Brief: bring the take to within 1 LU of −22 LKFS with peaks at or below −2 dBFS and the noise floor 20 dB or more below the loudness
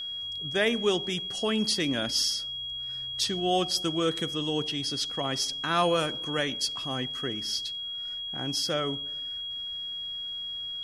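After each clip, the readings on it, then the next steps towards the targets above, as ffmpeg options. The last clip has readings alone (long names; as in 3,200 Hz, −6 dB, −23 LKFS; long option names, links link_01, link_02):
interfering tone 3,300 Hz; level of the tone −33 dBFS; integrated loudness −28.5 LKFS; sample peak −12.0 dBFS; target loudness −22.0 LKFS
→ -af "bandreject=frequency=3300:width=30"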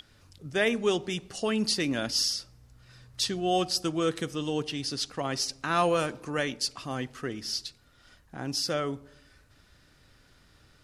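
interfering tone none found; integrated loudness −29.5 LKFS; sample peak −12.5 dBFS; target loudness −22.0 LKFS
→ -af "volume=7.5dB"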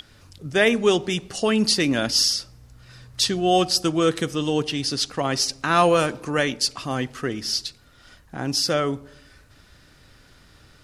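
integrated loudness −22.0 LKFS; sample peak −5.0 dBFS; background noise floor −53 dBFS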